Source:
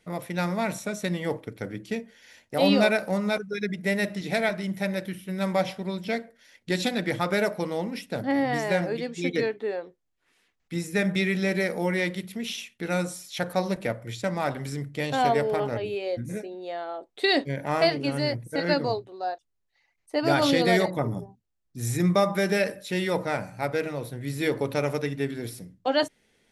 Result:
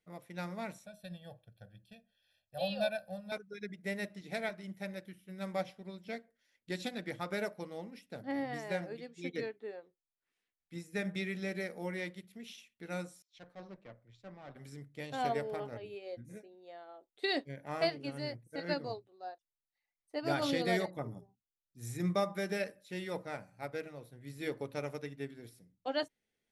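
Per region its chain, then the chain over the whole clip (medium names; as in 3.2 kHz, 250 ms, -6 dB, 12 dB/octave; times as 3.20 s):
0.86–3.32 s: peaking EQ 1.4 kHz -6.5 dB 1.2 oct + static phaser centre 1.4 kHz, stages 8 + comb 1.2 ms, depth 87%
13.22–14.56 s: valve stage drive 28 dB, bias 0.6 + distance through air 140 m + three bands expanded up and down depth 100%
whole clip: band-stop 950 Hz, Q 20; upward expansion 1.5:1, over -39 dBFS; trim -9 dB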